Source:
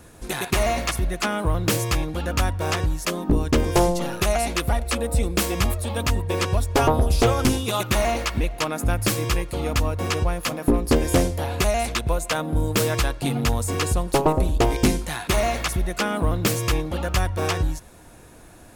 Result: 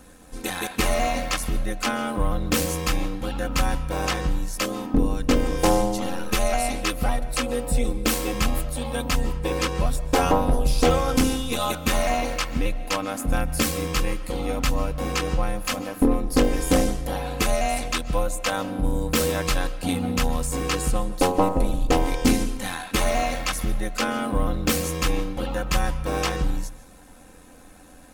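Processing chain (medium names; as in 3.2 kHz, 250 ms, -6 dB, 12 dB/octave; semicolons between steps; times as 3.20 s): granular stretch 1.5×, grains 23 ms; algorithmic reverb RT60 0.81 s, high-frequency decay 0.7×, pre-delay 105 ms, DRR 16 dB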